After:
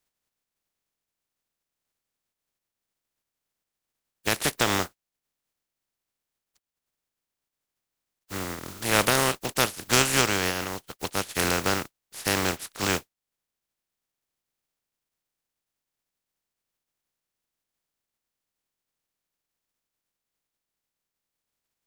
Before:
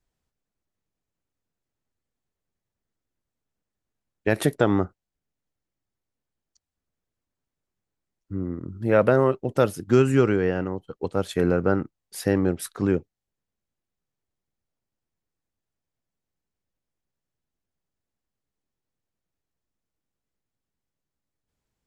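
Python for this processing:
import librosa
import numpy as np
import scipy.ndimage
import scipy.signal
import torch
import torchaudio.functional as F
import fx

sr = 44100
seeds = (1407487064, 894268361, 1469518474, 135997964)

y = fx.spec_flatten(x, sr, power=0.28)
y = F.gain(torch.from_numpy(y), -3.5).numpy()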